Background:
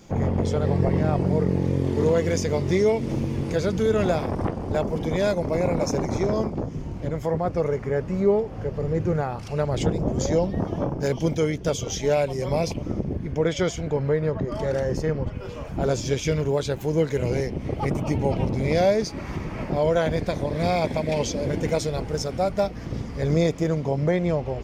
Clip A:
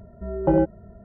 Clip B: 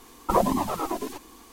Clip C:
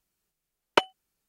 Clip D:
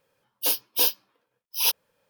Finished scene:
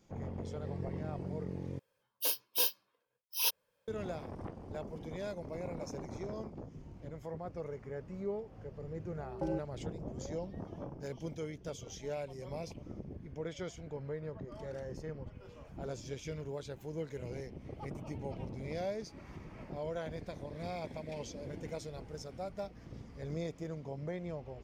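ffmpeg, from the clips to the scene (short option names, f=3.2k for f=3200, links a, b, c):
-filter_complex "[0:a]volume=-18dB[a];[4:a]aecho=1:1:1.9:0.3[b];[a]asplit=2[c][d];[c]atrim=end=1.794[e];[b]atrim=end=2.09,asetpts=PTS-STARTPTS,volume=-9dB[f];[d]atrim=start=3.876[g];[1:a]atrim=end=1.04,asetpts=PTS-STARTPTS,volume=-17dB,afade=t=in:d=0.004:c=hsin,afade=t=out:st=1.036:d=0.004:c=hsin,adelay=8940[h];[e][f]acrossfade=d=0.004:c1=hsin:c2=hsin[i];[i][g]acrossfade=d=0.004:c1=hsin:c2=hsin[j];[j][h]amix=inputs=2:normalize=0"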